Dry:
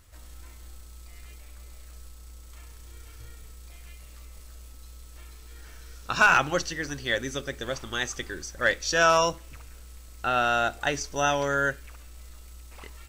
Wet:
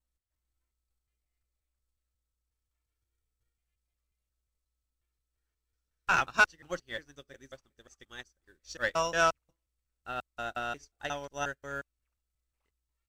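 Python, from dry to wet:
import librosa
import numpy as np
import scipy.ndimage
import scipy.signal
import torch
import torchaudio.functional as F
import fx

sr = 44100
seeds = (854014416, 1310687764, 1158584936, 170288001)

y = fx.block_reorder(x, sr, ms=179.0, group=2)
y = 10.0 ** (-12.0 / 20.0) * np.tanh(y / 10.0 ** (-12.0 / 20.0))
y = fx.upward_expand(y, sr, threshold_db=-44.0, expansion=2.5)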